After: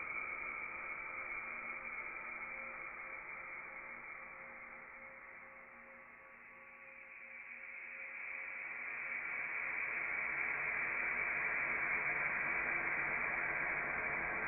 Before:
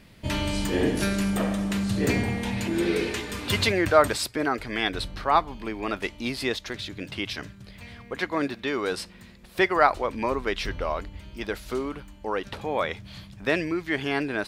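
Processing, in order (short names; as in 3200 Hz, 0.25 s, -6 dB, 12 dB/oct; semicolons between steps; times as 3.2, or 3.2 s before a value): Chebyshev high-pass 1200 Hz, order 5; inverted band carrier 3500 Hz; Paulstretch 25×, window 0.50 s, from 11.87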